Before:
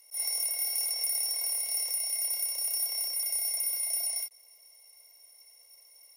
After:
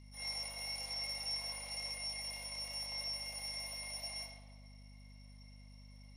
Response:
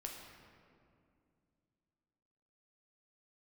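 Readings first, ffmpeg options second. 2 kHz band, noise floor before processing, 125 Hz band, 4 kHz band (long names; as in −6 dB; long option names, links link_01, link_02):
+0.5 dB, −58 dBFS, can't be measured, −4.5 dB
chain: -filter_complex "[0:a]highpass=570,lowpass=4000[link_01];[1:a]atrim=start_sample=2205,asetrate=79380,aresample=44100[link_02];[link_01][link_02]afir=irnorm=-1:irlink=0,aeval=exprs='val(0)+0.000708*(sin(2*PI*50*n/s)+sin(2*PI*2*50*n/s)/2+sin(2*PI*3*50*n/s)/3+sin(2*PI*4*50*n/s)/4+sin(2*PI*5*50*n/s)/5)':channel_layout=same,volume=8.5dB"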